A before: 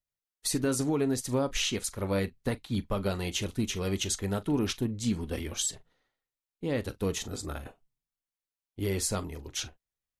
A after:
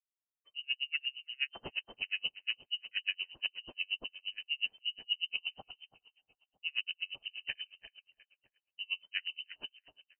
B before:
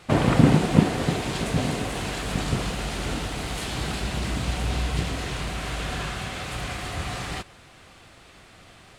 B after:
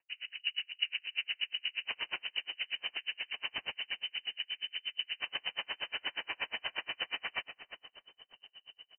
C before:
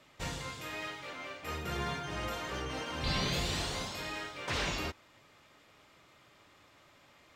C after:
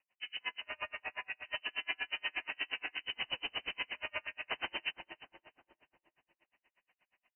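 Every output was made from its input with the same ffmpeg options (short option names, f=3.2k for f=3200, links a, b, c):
-filter_complex "[0:a]areverse,acompressor=threshold=-35dB:ratio=10,areverse,equalizer=f=1.8k:t=o:w=0.23:g=-9,afwtdn=0.00631,dynaudnorm=f=170:g=3:m=7dB,lowshelf=f=110:g=-8,lowpass=f=2.6k:t=q:w=0.5098,lowpass=f=2.6k:t=q:w=0.6013,lowpass=f=2.6k:t=q:w=0.9,lowpass=f=2.6k:t=q:w=2.563,afreqshift=-3100,asplit=2[a][b];[b]adelay=322,lowpass=f=1.7k:p=1,volume=-8.5dB,asplit=2[c][d];[d]adelay=322,lowpass=f=1.7k:p=1,volume=0.52,asplit=2[e][f];[f]adelay=322,lowpass=f=1.7k:p=1,volume=0.52,asplit=2[g][h];[h]adelay=322,lowpass=f=1.7k:p=1,volume=0.52,asplit=2[i][j];[j]adelay=322,lowpass=f=1.7k:p=1,volume=0.52,asplit=2[k][l];[l]adelay=322,lowpass=f=1.7k:p=1,volume=0.52[m];[c][e][g][i][k][m]amix=inputs=6:normalize=0[n];[a][n]amix=inputs=2:normalize=0,aeval=exprs='val(0)*pow(10,-38*(0.5-0.5*cos(2*PI*8.4*n/s))/20)':c=same,volume=2dB"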